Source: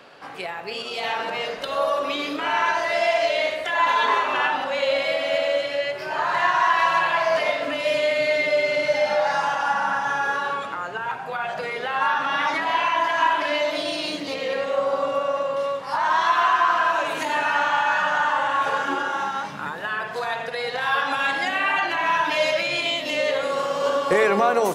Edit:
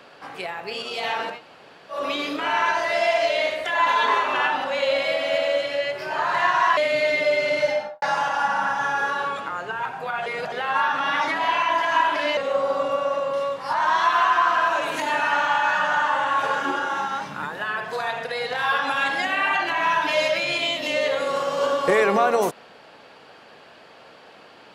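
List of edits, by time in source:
0:01.33–0:01.96: fill with room tone, crossfade 0.16 s
0:06.77–0:08.03: remove
0:08.90–0:09.28: fade out and dull
0:11.52–0:11.78: reverse
0:13.63–0:14.60: remove

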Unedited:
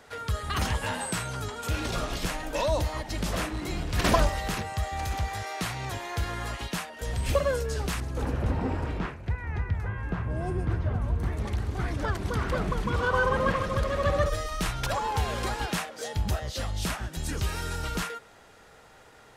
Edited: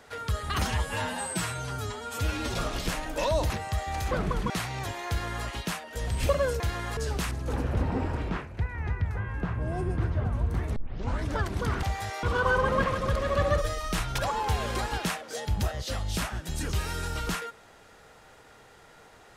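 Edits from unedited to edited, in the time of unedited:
0:00.65–0:01.91: time-stretch 1.5×
0:02.87–0:04.55: remove
0:05.16–0:05.56: swap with 0:12.52–0:12.91
0:06.14–0:06.51: duplicate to 0:07.66
0:11.45: tape start 0.49 s

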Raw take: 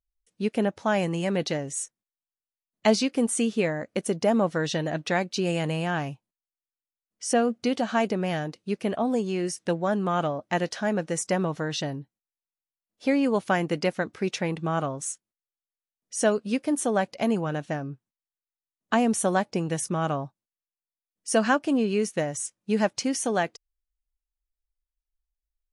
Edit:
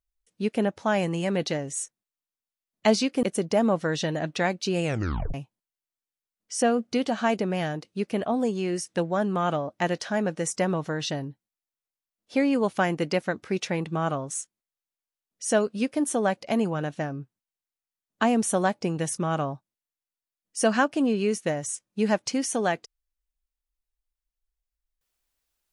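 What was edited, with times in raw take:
0:03.23–0:03.94: remove
0:05.55: tape stop 0.50 s

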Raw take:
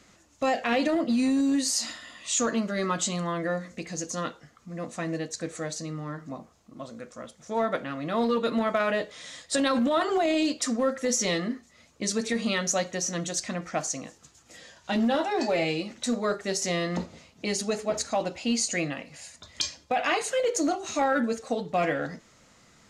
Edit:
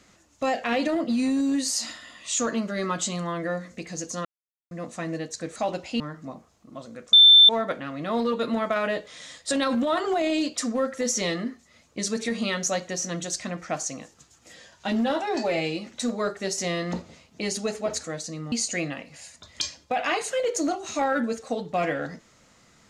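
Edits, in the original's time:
0:04.25–0:04.71: silence
0:05.56–0:06.04: swap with 0:18.08–0:18.52
0:07.17–0:07.53: beep over 3,550 Hz −9 dBFS

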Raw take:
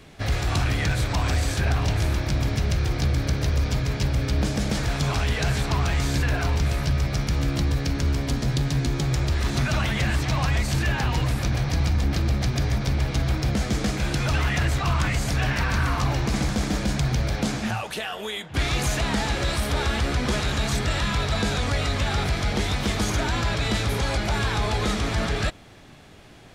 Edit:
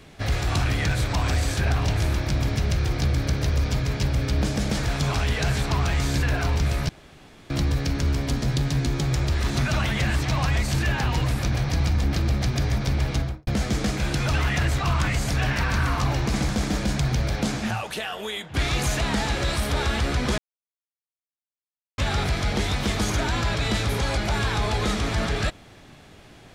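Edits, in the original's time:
0:06.89–0:07.50: fill with room tone
0:13.13–0:13.47: fade out and dull
0:20.38–0:21.98: silence

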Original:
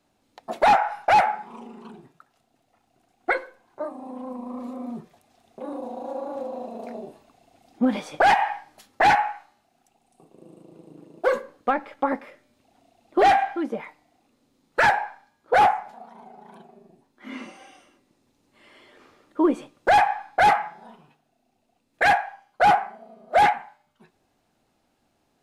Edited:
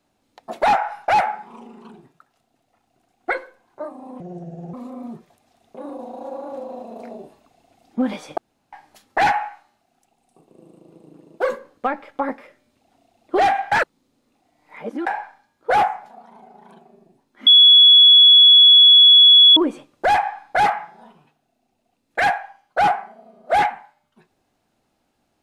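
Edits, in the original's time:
0:04.20–0:04.57: play speed 69%
0:08.21–0:08.56: fill with room tone
0:13.55–0:14.90: reverse
0:17.30–0:19.40: beep over 3,380 Hz −6 dBFS

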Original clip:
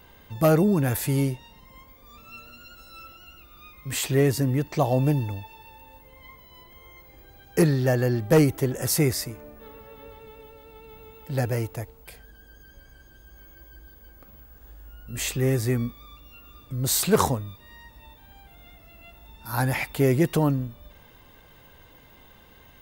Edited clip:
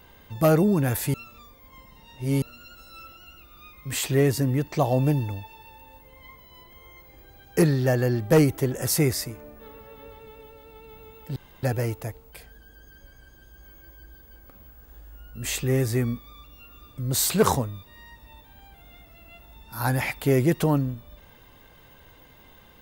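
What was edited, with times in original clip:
0:01.14–0:02.42: reverse
0:11.36: splice in room tone 0.27 s

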